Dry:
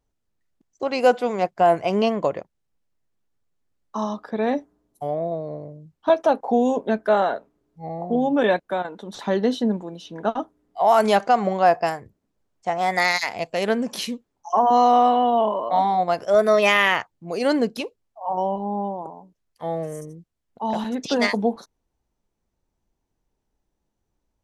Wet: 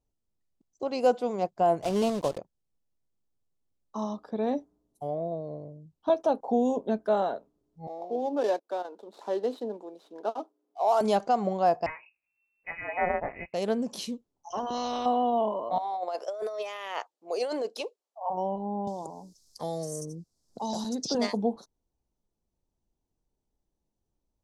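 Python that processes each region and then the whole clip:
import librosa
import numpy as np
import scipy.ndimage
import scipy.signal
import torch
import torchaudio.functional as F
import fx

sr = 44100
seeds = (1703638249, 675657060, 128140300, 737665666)

y = fx.chain(x, sr, fx.block_float(bits=3),
    fx.high_shelf(hz=5300.0, db=-7.5), at=(1.82, 2.38))
y = fx.chain(y, sr, fx.median_filter(points=15),
    fx.highpass(hz=330.0, slope=24), at=(7.87, 11.01))
y = fx.chain(y, sr, fx.doubler(ms=17.0, db=-3.5),
    fx.freq_invert(carrier_hz=2700), at=(11.86, 13.54))
y = fx.chain(y, sr, fx.ladder_lowpass(hz=5600.0, resonance_pct=25),
    fx.spectral_comp(ratio=2.0), at=(14.5, 15.06))
y = fx.chain(y, sr, fx.highpass(hz=430.0, slope=24),
    fx.high_shelf(hz=9400.0, db=-5.0),
    fx.over_compress(threshold_db=-25.0, ratio=-1.0), at=(15.78, 18.3))
y = fx.chain(y, sr, fx.high_shelf_res(hz=3700.0, db=10.5, q=3.0),
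    fx.band_squash(depth_pct=70), at=(18.87, 21.15))
y = scipy.signal.sosfilt(scipy.signal.butter(2, 10000.0, 'lowpass', fs=sr, output='sos'), y)
y = fx.peak_eq(y, sr, hz=1900.0, db=-11.5, octaves=1.3)
y = F.gain(torch.from_numpy(y), -5.0).numpy()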